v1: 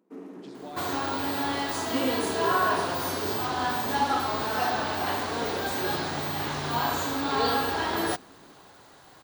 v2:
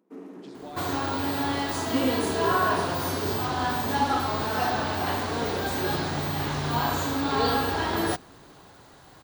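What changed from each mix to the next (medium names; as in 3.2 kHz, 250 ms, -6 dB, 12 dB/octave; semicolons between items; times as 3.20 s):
second sound: add bass shelf 200 Hz +9 dB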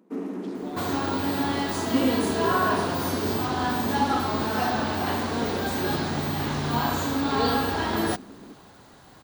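first sound +8.5 dB; master: add peaking EQ 220 Hz +6.5 dB 0.41 oct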